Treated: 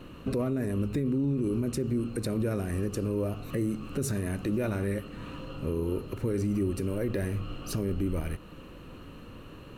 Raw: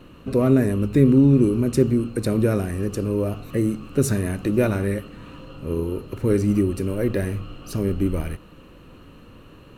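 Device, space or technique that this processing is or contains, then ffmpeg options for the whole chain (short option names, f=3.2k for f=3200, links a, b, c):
stacked limiters: -af "alimiter=limit=-10.5dB:level=0:latency=1:release=345,alimiter=limit=-15dB:level=0:latency=1:release=19,alimiter=limit=-21.5dB:level=0:latency=1:release=240"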